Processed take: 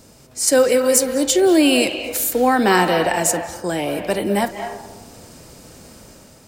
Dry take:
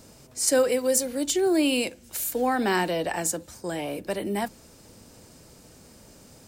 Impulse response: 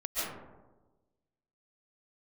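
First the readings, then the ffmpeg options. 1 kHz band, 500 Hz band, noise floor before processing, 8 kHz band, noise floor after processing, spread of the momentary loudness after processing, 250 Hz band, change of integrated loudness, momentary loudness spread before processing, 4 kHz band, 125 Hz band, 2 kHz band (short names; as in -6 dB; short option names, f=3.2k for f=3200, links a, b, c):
+9.5 dB, +8.5 dB, -52 dBFS, +7.5 dB, -48 dBFS, 11 LU, +8.5 dB, +8.5 dB, 10 LU, +8.5 dB, +8.5 dB, +9.0 dB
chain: -filter_complex "[0:a]dynaudnorm=f=130:g=7:m=5.5dB,asplit=2[a][b];[b]acrossover=split=530 4600:gain=0.2 1 0.0794[c][d][e];[c][d][e]amix=inputs=3:normalize=0[f];[1:a]atrim=start_sample=2205,adelay=54[g];[f][g]afir=irnorm=-1:irlink=0,volume=-11dB[h];[a][h]amix=inputs=2:normalize=0,volume=3dB"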